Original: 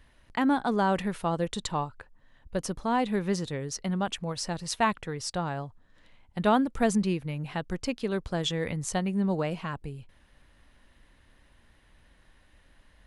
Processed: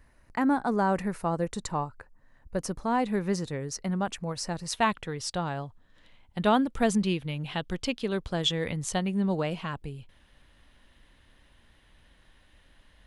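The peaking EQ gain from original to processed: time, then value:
peaking EQ 3.3 kHz 0.55 oct
-13 dB
from 2.58 s -6.5 dB
from 4.73 s +4 dB
from 7.06 s +11 dB
from 7.98 s +5 dB

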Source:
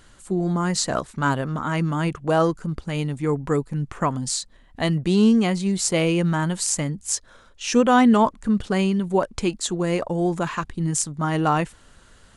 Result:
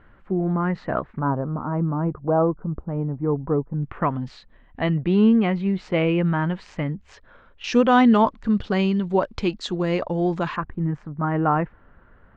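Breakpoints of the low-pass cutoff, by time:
low-pass 24 dB/octave
2.1 kHz
from 1.19 s 1.1 kHz
from 3.83 s 2.7 kHz
from 7.64 s 4.6 kHz
from 10.56 s 1.8 kHz

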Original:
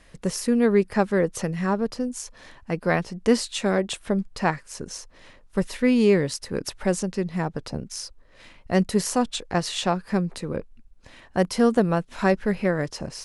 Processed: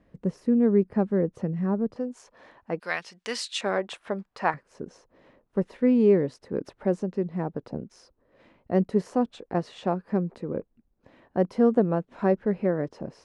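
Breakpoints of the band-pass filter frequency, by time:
band-pass filter, Q 0.71
220 Hz
from 1.96 s 620 Hz
from 2.80 s 3.1 kHz
from 3.61 s 1 kHz
from 4.54 s 350 Hz

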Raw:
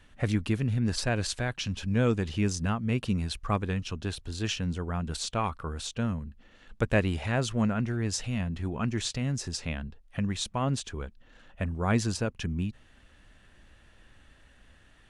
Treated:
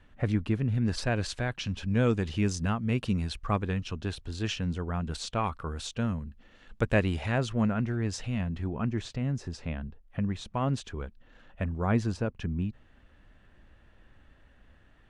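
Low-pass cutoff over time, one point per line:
low-pass 6 dB/octave
1.7 kHz
from 0.74 s 3.8 kHz
from 1.95 s 7.4 kHz
from 3.30 s 4.3 kHz
from 5.47 s 7.1 kHz
from 7.38 s 3 kHz
from 8.64 s 1.3 kHz
from 10.50 s 2.9 kHz
from 11.86 s 1.5 kHz

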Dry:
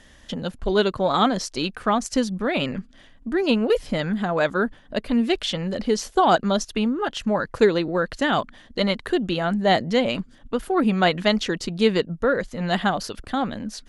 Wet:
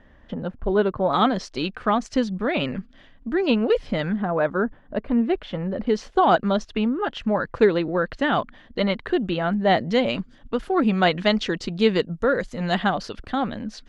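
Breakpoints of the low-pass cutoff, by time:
1.5 kHz
from 1.13 s 3.8 kHz
from 4.16 s 1.5 kHz
from 5.87 s 3.1 kHz
from 9.81 s 5.1 kHz
from 12.00 s 9.3 kHz
from 12.74 s 4.4 kHz

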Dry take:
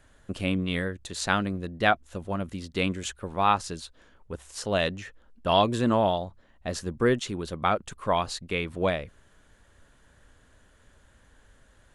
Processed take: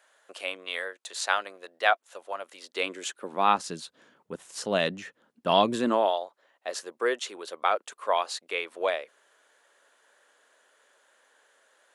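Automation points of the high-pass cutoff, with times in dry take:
high-pass 24 dB/octave
2.55 s 530 Hz
3.69 s 160 Hz
5.73 s 160 Hz
6.14 s 440 Hz

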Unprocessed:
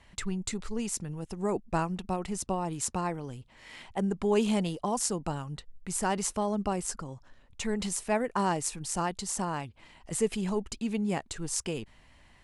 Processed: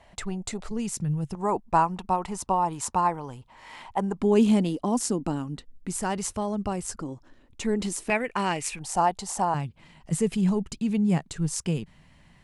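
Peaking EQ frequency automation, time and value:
peaking EQ +13.5 dB 0.81 oct
680 Hz
from 0.71 s 140 Hz
from 1.35 s 940 Hz
from 4.19 s 270 Hz
from 5.94 s 94 Hz
from 6.98 s 310 Hz
from 8.10 s 2.4 kHz
from 8.79 s 780 Hz
from 9.54 s 160 Hz

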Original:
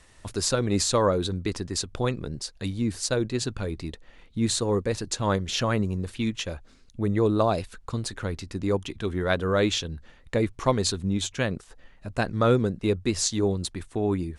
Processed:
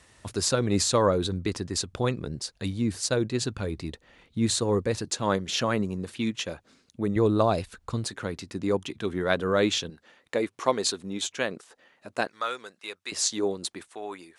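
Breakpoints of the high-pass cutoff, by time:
67 Hz
from 5.06 s 150 Hz
from 7.16 s 48 Hz
from 8.07 s 140 Hz
from 9.90 s 320 Hz
from 12.27 s 1.2 kHz
from 13.12 s 320 Hz
from 13.88 s 770 Hz

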